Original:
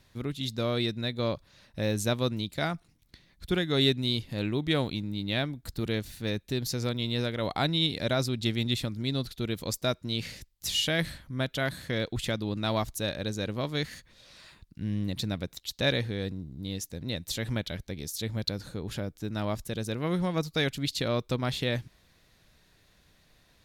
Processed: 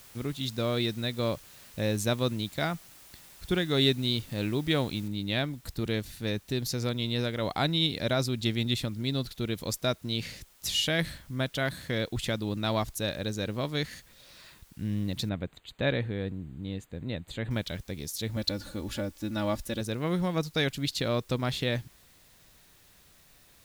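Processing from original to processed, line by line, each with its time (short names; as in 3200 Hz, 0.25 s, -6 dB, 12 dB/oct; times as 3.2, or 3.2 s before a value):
5.08 noise floor step -53 dB -61 dB
15.29–17.51 running mean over 8 samples
18.36–19.81 comb 3.5 ms, depth 73%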